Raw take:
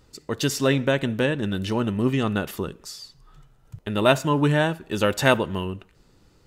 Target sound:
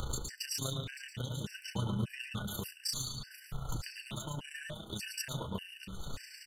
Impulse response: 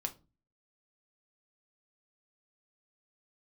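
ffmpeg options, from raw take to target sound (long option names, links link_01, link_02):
-filter_complex "[0:a]equalizer=frequency=280:width_type=o:width=2.2:gain=-9,acompressor=mode=upward:threshold=-27dB:ratio=2.5,alimiter=limit=-23dB:level=0:latency=1:release=450,acrossover=split=150|3000[link_01][link_02][link_03];[link_02]acompressor=threshold=-44dB:ratio=5[link_04];[link_01][link_04][link_03]amix=inputs=3:normalize=0,aphaser=in_gain=1:out_gain=1:delay=1.8:decay=0.32:speed=0.55:type=sinusoidal,asoftclip=type=hard:threshold=-28dB,asplit=2[link_05][link_06];[link_06]adelay=15,volume=-2.5dB[link_07];[link_05][link_07]amix=inputs=2:normalize=0,tremolo=f=29:d=0.667,aecho=1:1:837:0.2,asplit=2[link_08][link_09];[1:a]atrim=start_sample=2205,adelay=114[link_10];[link_09][link_10]afir=irnorm=-1:irlink=0,volume=-3.5dB[link_11];[link_08][link_11]amix=inputs=2:normalize=0,afftfilt=real='re*gt(sin(2*PI*1.7*pts/sr)*(1-2*mod(floor(b*sr/1024/1500),2)),0)':imag='im*gt(sin(2*PI*1.7*pts/sr)*(1-2*mod(floor(b*sr/1024/1500),2)),0)':win_size=1024:overlap=0.75,volume=2.5dB"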